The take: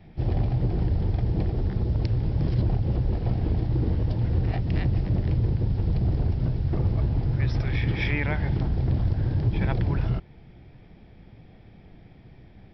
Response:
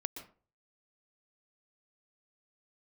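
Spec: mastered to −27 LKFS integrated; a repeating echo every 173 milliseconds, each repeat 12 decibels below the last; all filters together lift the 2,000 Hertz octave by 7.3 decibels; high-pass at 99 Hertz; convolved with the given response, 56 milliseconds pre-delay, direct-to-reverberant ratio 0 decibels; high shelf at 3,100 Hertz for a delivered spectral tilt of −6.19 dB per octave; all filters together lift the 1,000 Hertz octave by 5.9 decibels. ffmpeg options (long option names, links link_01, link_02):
-filter_complex "[0:a]highpass=99,equalizer=frequency=1000:width_type=o:gain=6.5,equalizer=frequency=2000:width_type=o:gain=5.5,highshelf=frequency=3100:gain=4,aecho=1:1:173|346|519:0.251|0.0628|0.0157,asplit=2[link_01][link_02];[1:a]atrim=start_sample=2205,adelay=56[link_03];[link_02][link_03]afir=irnorm=-1:irlink=0,volume=0.5dB[link_04];[link_01][link_04]amix=inputs=2:normalize=0,volume=-2.5dB"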